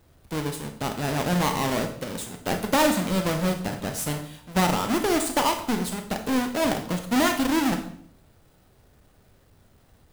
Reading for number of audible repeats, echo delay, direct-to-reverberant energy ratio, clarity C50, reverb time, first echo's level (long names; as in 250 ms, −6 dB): no echo audible, no echo audible, 5.0 dB, 9.0 dB, 0.60 s, no echo audible